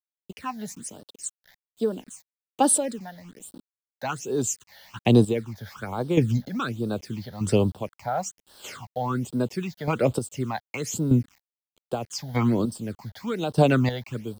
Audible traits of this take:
chopped level 0.81 Hz, depth 65%, duty 25%
a quantiser's noise floor 10 bits, dither none
phaser sweep stages 8, 1.2 Hz, lowest notch 330–2,200 Hz

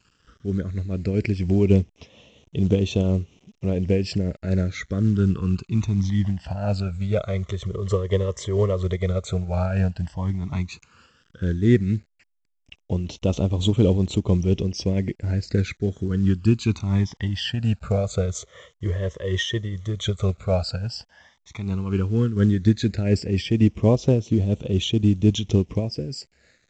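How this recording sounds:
a quantiser's noise floor 10 bits, dither none
phaser sweep stages 12, 0.091 Hz, lowest notch 250–1,600 Hz
tremolo triangle 4.2 Hz, depth 50%
A-law companding

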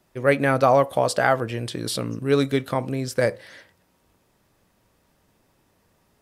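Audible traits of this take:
background noise floor −66 dBFS
spectral slope −5.5 dB per octave

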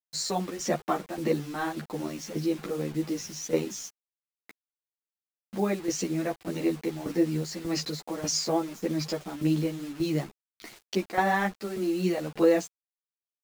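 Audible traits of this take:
tremolo saw down 1.7 Hz, depth 75%
a quantiser's noise floor 8 bits, dither none
a shimmering, thickened sound

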